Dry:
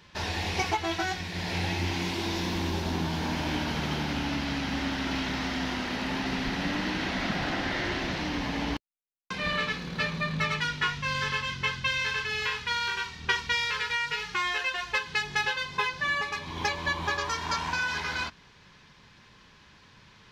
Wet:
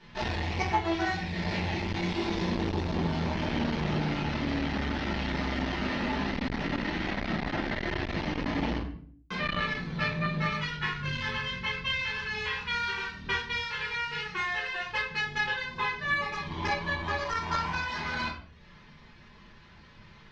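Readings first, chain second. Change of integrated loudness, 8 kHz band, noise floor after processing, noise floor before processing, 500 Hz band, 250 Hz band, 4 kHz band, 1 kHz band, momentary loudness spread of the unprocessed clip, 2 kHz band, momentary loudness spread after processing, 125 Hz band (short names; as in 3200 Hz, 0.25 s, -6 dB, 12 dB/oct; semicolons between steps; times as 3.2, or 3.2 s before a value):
-1.5 dB, -9.5 dB, -53 dBFS, -56 dBFS, +0.5 dB, +0.5 dB, -4.0 dB, -1.0 dB, 4 LU, -2.0 dB, 3 LU, +1.0 dB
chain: reverb removal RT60 0.7 s; vocal rider 0.5 s; air absorption 120 m; shoebox room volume 53 m³, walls mixed, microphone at 1.6 m; core saturation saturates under 510 Hz; gain -6 dB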